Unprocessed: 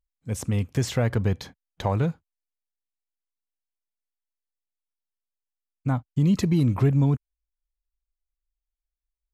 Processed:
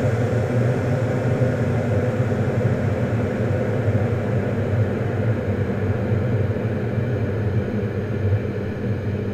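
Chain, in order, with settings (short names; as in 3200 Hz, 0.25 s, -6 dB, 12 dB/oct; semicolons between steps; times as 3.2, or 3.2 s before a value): transient shaper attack +8 dB, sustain -11 dB; Paulstretch 29×, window 1.00 s, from 1.03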